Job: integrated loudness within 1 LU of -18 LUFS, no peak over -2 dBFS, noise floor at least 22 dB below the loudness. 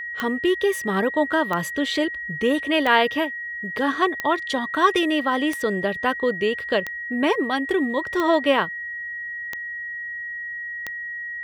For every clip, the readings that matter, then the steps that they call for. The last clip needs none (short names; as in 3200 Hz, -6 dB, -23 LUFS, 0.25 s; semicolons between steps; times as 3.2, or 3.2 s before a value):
clicks 9; steady tone 1900 Hz; tone level -29 dBFS; loudness -23.0 LUFS; peak -4.0 dBFS; loudness target -18.0 LUFS
-> de-click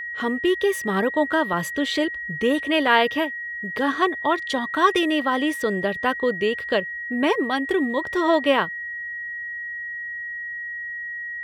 clicks 0; steady tone 1900 Hz; tone level -29 dBFS
-> notch 1900 Hz, Q 30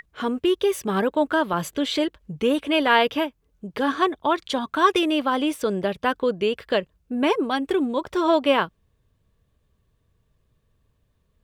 steady tone none; loudness -23.0 LUFS; peak -5.0 dBFS; loudness target -18.0 LUFS
-> gain +5 dB; limiter -2 dBFS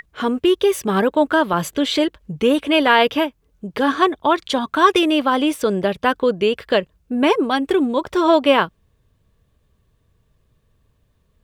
loudness -18.0 LUFS; peak -2.0 dBFS; noise floor -64 dBFS